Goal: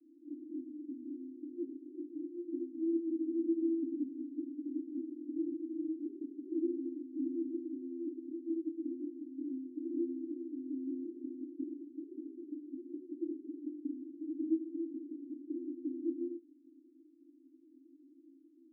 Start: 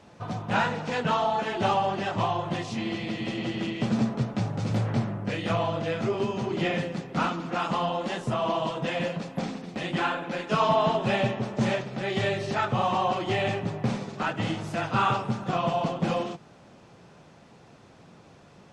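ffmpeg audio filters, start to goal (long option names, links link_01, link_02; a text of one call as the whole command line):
ffmpeg -i in.wav -af "asuperpass=centerf=300:order=12:qfactor=3.5,volume=2.5dB" out.wav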